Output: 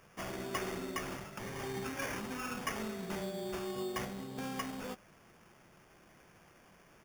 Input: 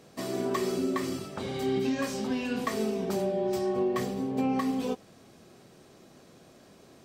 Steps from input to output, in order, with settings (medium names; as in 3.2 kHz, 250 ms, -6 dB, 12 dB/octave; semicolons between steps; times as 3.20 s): amplifier tone stack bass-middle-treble 5-5-5; comb 5.6 ms, depth 33%; sample-rate reducer 4 kHz, jitter 0%; trim +7 dB